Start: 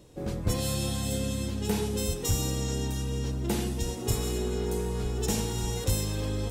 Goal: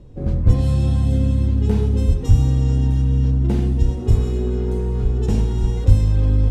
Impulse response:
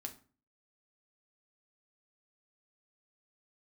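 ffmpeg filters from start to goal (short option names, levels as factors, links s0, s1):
-filter_complex "[0:a]acrusher=bits=7:mode=log:mix=0:aa=0.000001,aemphasis=mode=reproduction:type=riaa,asplit=2[s0][s1];[1:a]atrim=start_sample=2205[s2];[s1][s2]afir=irnorm=-1:irlink=0,volume=1.26[s3];[s0][s3]amix=inputs=2:normalize=0,volume=0.596"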